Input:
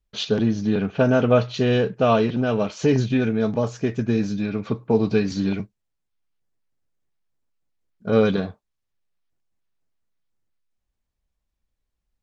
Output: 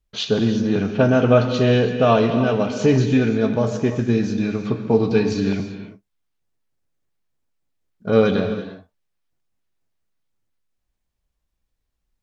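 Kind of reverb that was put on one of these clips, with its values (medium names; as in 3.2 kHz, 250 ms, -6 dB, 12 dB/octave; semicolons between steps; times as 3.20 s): gated-style reverb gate 370 ms flat, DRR 6.5 dB; trim +2 dB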